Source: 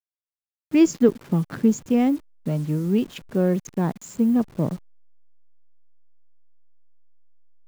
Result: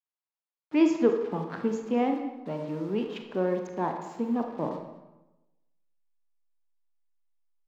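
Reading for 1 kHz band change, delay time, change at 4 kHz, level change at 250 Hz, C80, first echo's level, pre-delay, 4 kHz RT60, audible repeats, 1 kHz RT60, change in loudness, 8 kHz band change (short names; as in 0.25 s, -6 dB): +2.0 dB, 0.218 s, -5.0 dB, -8.0 dB, 8.0 dB, -18.0 dB, 29 ms, 0.70 s, 1, 1.0 s, -6.5 dB, under -10 dB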